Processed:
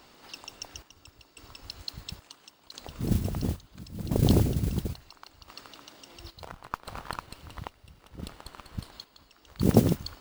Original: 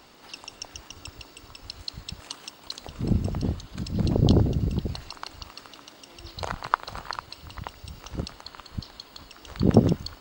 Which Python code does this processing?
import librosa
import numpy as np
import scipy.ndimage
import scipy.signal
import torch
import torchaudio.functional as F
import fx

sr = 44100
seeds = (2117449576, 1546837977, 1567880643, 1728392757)

y = fx.chopper(x, sr, hz=0.73, depth_pct=65, duty_pct=60)
y = fx.mod_noise(y, sr, seeds[0], snr_db=19)
y = fx.running_max(y, sr, window=5, at=(6.44, 8.92))
y = F.gain(torch.from_numpy(y), -2.5).numpy()